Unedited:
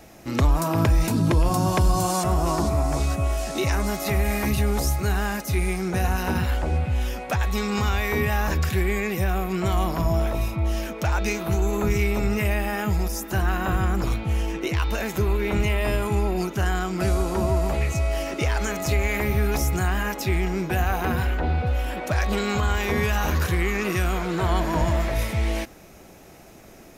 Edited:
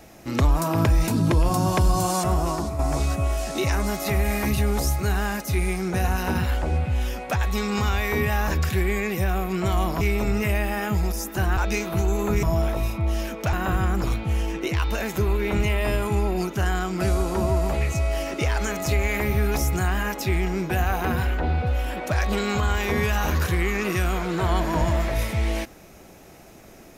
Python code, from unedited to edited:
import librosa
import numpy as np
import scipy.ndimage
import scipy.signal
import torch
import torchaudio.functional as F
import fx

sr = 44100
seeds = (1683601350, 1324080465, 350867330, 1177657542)

y = fx.edit(x, sr, fx.fade_out_to(start_s=2.34, length_s=0.45, floor_db=-8.0),
    fx.swap(start_s=10.01, length_s=1.1, other_s=11.97, other_length_s=1.56), tone=tone)